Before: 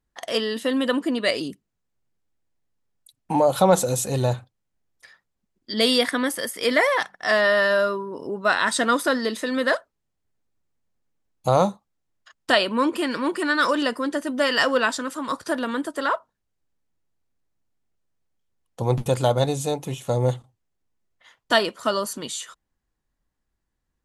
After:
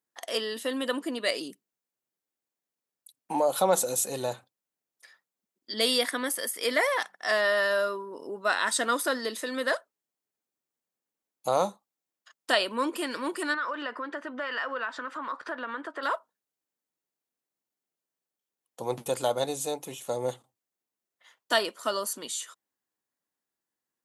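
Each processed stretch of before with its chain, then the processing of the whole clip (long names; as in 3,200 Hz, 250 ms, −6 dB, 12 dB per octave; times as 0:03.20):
0:13.54–0:16.03: low-pass filter 2,900 Hz + parametric band 1,400 Hz +11 dB 1.9 octaves + downward compressor 3 to 1, threshold −27 dBFS
whole clip: high-pass filter 290 Hz 12 dB per octave; high-shelf EQ 8,600 Hz +11 dB; level −6 dB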